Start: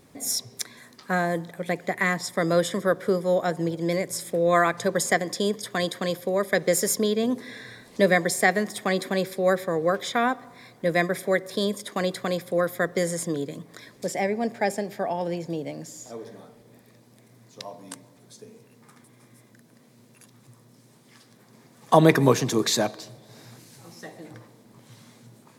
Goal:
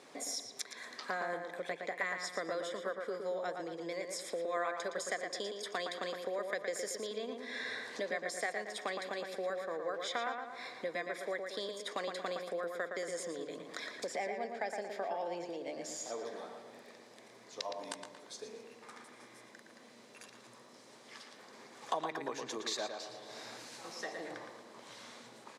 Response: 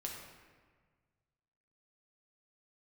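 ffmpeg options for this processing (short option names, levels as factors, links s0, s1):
-filter_complex "[0:a]acompressor=threshold=0.0126:ratio=6,highpass=460,lowpass=6600,asplit=2[s0][s1];[s1]adelay=115,lowpass=f=3700:p=1,volume=0.562,asplit=2[s2][s3];[s3]adelay=115,lowpass=f=3700:p=1,volume=0.47,asplit=2[s4][s5];[s5]adelay=115,lowpass=f=3700:p=1,volume=0.47,asplit=2[s6][s7];[s7]adelay=115,lowpass=f=3700:p=1,volume=0.47,asplit=2[s8][s9];[s9]adelay=115,lowpass=f=3700:p=1,volume=0.47,asplit=2[s10][s11];[s11]adelay=115,lowpass=f=3700:p=1,volume=0.47[s12];[s2][s4][s6][s8][s10][s12]amix=inputs=6:normalize=0[s13];[s0][s13]amix=inputs=2:normalize=0,volume=1.5"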